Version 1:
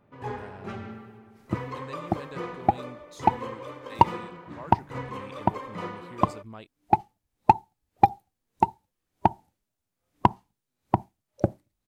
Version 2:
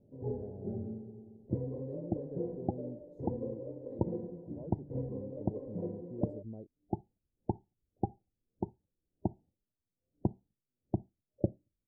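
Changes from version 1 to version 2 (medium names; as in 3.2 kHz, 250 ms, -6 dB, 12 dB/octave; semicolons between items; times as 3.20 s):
second sound -6.0 dB; master: add inverse Chebyshev low-pass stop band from 1.1 kHz, stop band 40 dB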